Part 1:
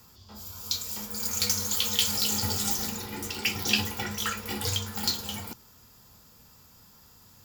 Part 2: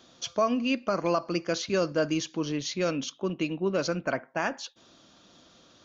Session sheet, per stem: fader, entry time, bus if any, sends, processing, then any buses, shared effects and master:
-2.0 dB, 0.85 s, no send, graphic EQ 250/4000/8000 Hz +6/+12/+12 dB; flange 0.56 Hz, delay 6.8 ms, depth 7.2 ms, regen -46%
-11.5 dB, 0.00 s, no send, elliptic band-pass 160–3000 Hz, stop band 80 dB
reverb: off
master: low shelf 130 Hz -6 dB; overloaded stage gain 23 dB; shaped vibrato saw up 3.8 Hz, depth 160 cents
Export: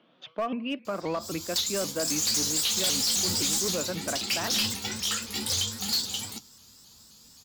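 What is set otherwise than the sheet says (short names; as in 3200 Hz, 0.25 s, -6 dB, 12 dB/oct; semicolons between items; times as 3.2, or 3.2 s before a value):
stem 2 -11.5 dB -> -4.0 dB; master: missing low shelf 130 Hz -6 dB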